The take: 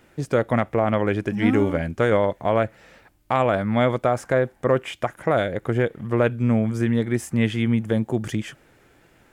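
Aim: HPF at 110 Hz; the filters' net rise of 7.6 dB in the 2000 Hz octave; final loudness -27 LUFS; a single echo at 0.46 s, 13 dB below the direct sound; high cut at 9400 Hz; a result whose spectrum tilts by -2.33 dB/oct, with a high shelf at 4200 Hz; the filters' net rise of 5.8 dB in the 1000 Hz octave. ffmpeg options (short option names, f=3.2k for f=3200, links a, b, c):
-af "highpass=110,lowpass=9.4k,equalizer=f=1k:t=o:g=6,equalizer=f=2k:t=o:g=8.5,highshelf=f=4.2k:g=-5.5,aecho=1:1:460:0.224,volume=-7dB"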